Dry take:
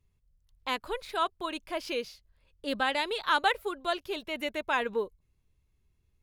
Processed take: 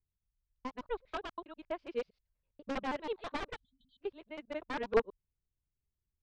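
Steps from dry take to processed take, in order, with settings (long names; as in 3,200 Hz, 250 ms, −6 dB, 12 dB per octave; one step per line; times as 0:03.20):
reversed piece by piece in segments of 81 ms
time-frequency box erased 0:03.56–0:03.99, 260–3,000 Hz
wrap-around overflow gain 21.5 dB
head-to-tape spacing loss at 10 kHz 37 dB
expander for the loud parts 2.5 to 1, over −43 dBFS
level +6 dB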